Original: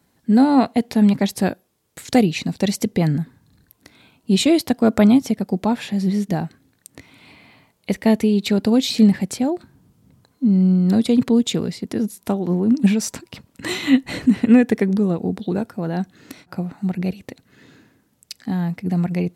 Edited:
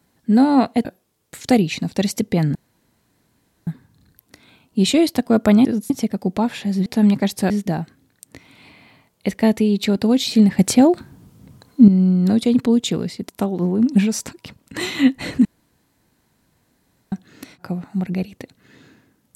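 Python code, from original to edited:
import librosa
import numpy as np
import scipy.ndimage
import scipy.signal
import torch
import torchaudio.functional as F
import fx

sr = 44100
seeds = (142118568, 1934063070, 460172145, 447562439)

y = fx.edit(x, sr, fx.move(start_s=0.85, length_s=0.64, to_s=6.13),
    fx.insert_room_tone(at_s=3.19, length_s=1.12),
    fx.clip_gain(start_s=9.22, length_s=1.29, db=8.5),
    fx.move(start_s=11.92, length_s=0.25, to_s=5.17),
    fx.room_tone_fill(start_s=14.33, length_s=1.67), tone=tone)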